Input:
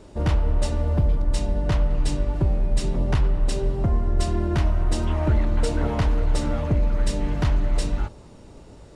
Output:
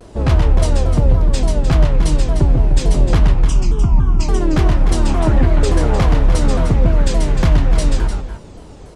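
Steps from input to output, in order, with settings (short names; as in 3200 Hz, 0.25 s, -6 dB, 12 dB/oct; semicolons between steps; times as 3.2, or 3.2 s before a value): 3.34–4.28 fixed phaser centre 2700 Hz, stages 8; tapped delay 0.135/0.303 s -4.5/-9.5 dB; shaped vibrato saw down 3.5 Hz, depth 250 cents; gain +6.5 dB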